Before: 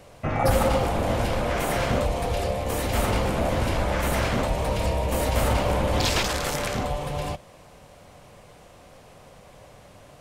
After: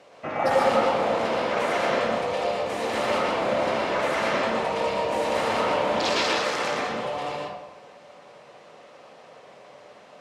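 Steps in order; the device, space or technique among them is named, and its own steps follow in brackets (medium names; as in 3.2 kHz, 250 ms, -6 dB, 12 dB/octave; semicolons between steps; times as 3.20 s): supermarket ceiling speaker (band-pass 310–5400 Hz; reverberation RT60 1.0 s, pre-delay 112 ms, DRR -2.5 dB); trim -1.5 dB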